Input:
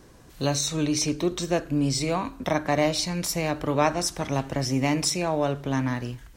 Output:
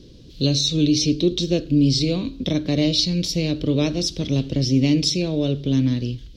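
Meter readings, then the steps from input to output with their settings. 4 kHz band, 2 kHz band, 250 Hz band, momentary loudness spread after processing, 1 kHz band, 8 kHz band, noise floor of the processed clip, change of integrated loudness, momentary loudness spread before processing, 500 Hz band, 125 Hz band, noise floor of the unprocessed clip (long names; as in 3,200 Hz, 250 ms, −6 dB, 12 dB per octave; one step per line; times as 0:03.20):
+8.0 dB, −4.0 dB, +7.5 dB, 6 LU, −14.0 dB, −0.5 dB, −44 dBFS, +5.0 dB, 5 LU, +1.0 dB, +7.5 dB, −50 dBFS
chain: drawn EQ curve 300 Hz 0 dB, 520 Hz −5 dB, 810 Hz −25 dB, 1,800 Hz −19 dB, 3,400 Hz +4 dB, 4,800 Hz +2 dB, 8,200 Hz −19 dB
level +7.5 dB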